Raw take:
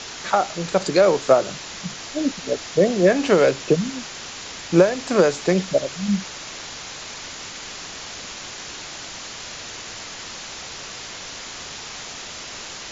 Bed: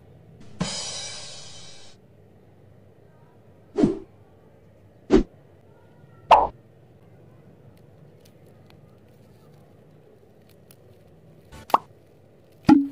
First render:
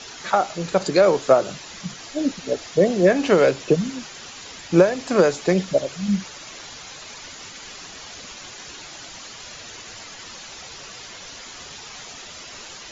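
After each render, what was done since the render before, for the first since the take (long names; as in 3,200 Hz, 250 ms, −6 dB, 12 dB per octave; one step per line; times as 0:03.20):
broadband denoise 8 dB, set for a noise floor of −36 dBFS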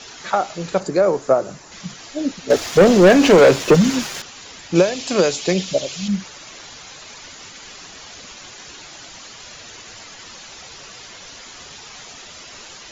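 0:00.80–0:01.72: parametric band 3,300 Hz −11.5 dB 1.3 octaves
0:02.50–0:04.22: leveller curve on the samples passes 3
0:04.75–0:06.08: high shelf with overshoot 2,200 Hz +7 dB, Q 1.5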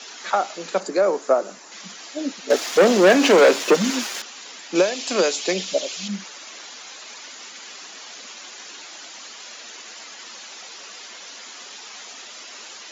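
Butterworth high-pass 200 Hz 48 dB per octave
low-shelf EQ 480 Hz −6.5 dB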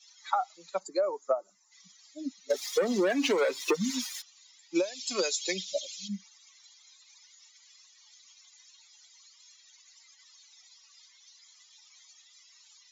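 spectral dynamics exaggerated over time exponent 2
downward compressor 16 to 1, threshold −23 dBFS, peak gain reduction 12.5 dB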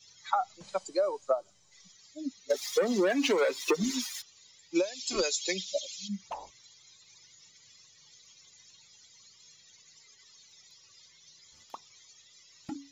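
mix in bed −26 dB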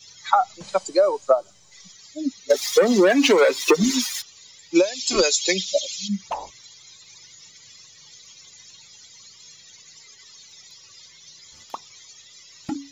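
level +10.5 dB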